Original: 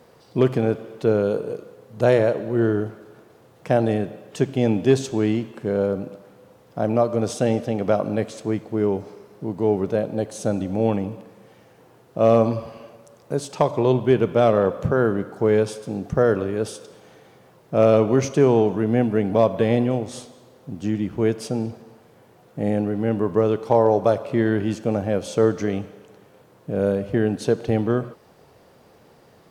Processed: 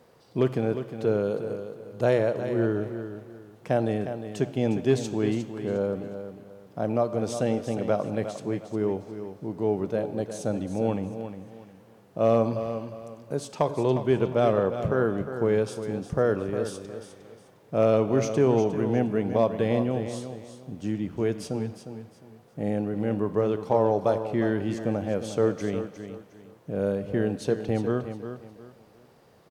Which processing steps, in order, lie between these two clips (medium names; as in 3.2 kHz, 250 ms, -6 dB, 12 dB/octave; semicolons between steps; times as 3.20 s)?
feedback delay 357 ms, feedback 28%, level -10 dB; trim -5.5 dB